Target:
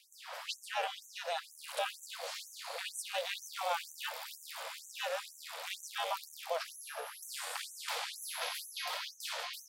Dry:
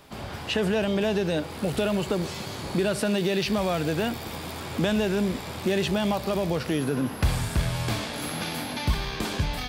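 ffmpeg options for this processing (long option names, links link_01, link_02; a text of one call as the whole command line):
ffmpeg -i in.wav -af "aeval=exprs='val(0)*sin(2*PI*170*n/s)':channel_layout=same,afftfilt=real='re*gte(b*sr/1024,440*pow(6000/440,0.5+0.5*sin(2*PI*2.1*pts/sr)))':imag='im*gte(b*sr/1024,440*pow(6000/440,0.5+0.5*sin(2*PI*2.1*pts/sr)))':win_size=1024:overlap=0.75,volume=-2dB" out.wav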